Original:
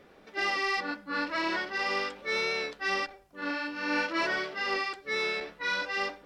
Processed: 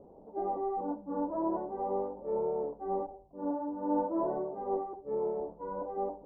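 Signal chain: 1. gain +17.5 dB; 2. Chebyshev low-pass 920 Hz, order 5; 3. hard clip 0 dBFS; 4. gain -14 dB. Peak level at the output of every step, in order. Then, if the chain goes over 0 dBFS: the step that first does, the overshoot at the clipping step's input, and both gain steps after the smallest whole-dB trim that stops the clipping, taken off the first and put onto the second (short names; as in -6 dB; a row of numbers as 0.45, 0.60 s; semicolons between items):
-1.5, -5.0, -5.0, -19.0 dBFS; no overload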